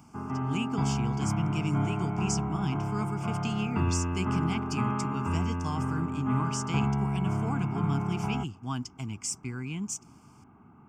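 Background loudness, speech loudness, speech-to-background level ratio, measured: -31.0 LUFS, -35.0 LUFS, -4.0 dB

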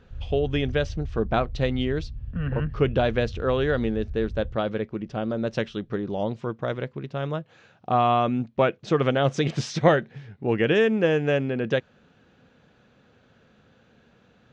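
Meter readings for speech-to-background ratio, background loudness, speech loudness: 12.0 dB, -37.5 LUFS, -25.5 LUFS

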